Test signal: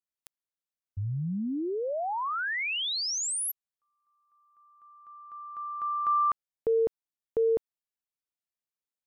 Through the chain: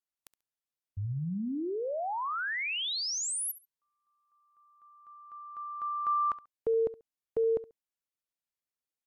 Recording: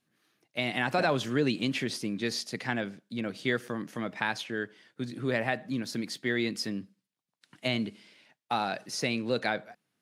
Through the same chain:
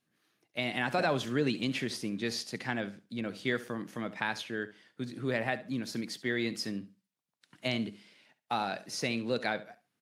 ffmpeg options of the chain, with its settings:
ffmpeg -i in.wav -af "aecho=1:1:69|138:0.15|0.0299,volume=-2.5dB" -ar 44100 -c:a aac -b:a 96k out.aac

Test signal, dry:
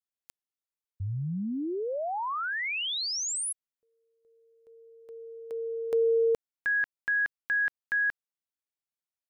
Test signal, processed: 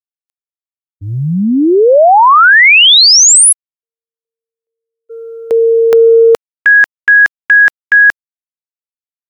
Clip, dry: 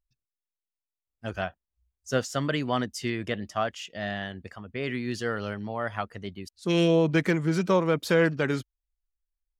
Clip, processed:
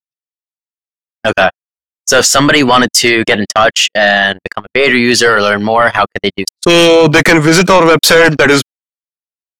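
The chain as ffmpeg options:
ffmpeg -i in.wav -af "highpass=frequency=570:poles=1,agate=range=-51dB:threshold=-49dB:ratio=16:release=35:detection=peak,apsyclip=31.5dB,volume=-2dB" out.wav

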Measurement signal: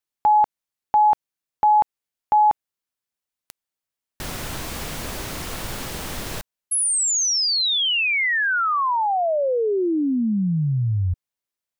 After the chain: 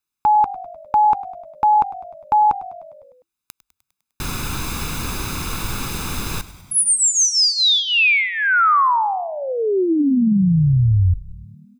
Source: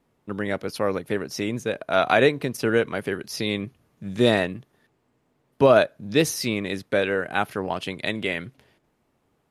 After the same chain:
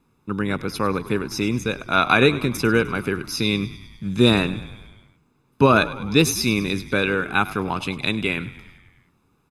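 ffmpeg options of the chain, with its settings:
ffmpeg -i in.wav -filter_complex "[0:a]aecho=1:1:0.8:0.67,asplit=2[link_01][link_02];[link_02]asplit=7[link_03][link_04][link_05][link_06][link_07][link_08][link_09];[link_03]adelay=101,afreqshift=-49,volume=-16.5dB[link_10];[link_04]adelay=202,afreqshift=-98,volume=-20.4dB[link_11];[link_05]adelay=303,afreqshift=-147,volume=-24.3dB[link_12];[link_06]adelay=404,afreqshift=-196,volume=-28.1dB[link_13];[link_07]adelay=505,afreqshift=-245,volume=-32dB[link_14];[link_08]adelay=606,afreqshift=-294,volume=-35.9dB[link_15];[link_09]adelay=707,afreqshift=-343,volume=-39.8dB[link_16];[link_10][link_11][link_12][link_13][link_14][link_15][link_16]amix=inputs=7:normalize=0[link_17];[link_01][link_17]amix=inputs=2:normalize=0,volume=2.5dB" out.wav

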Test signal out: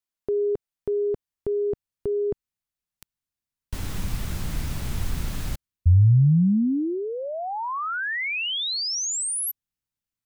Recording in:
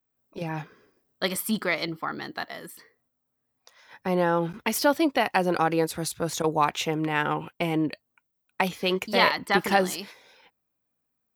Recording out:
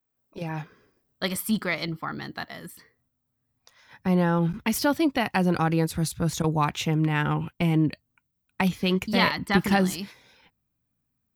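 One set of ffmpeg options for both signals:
ffmpeg -i in.wav -af "asubboost=boost=5.5:cutoff=200,volume=-1dB" out.wav

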